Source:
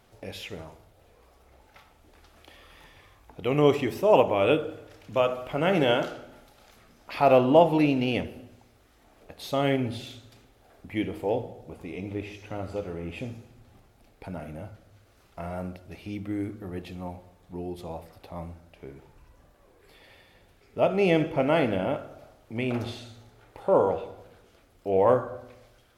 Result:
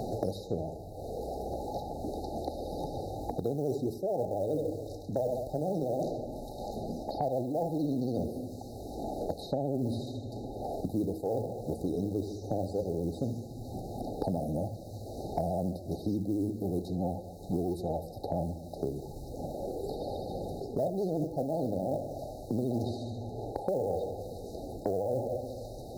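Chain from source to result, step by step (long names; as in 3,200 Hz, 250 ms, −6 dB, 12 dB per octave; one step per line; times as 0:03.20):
reversed playback
downward compressor 12 to 1, threshold −31 dBFS, peak gain reduction 19 dB
reversed playback
pitch vibrato 14 Hz 91 cents
floating-point word with a short mantissa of 4 bits
linear-phase brick-wall band-stop 860–3,700 Hz
multiband upward and downward compressor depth 100%
level +4 dB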